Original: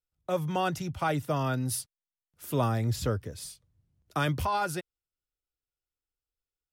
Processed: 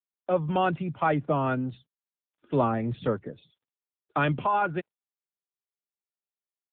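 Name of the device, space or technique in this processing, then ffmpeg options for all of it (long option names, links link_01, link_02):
mobile call with aggressive noise cancelling: -af "highpass=frequency=150:width=0.5412,highpass=frequency=150:width=1.3066,equalizer=frequency=4500:width_type=o:width=0.62:gain=-5.5,afftdn=noise_reduction=29:noise_floor=-51,volume=5dB" -ar 8000 -c:a libopencore_amrnb -b:a 7950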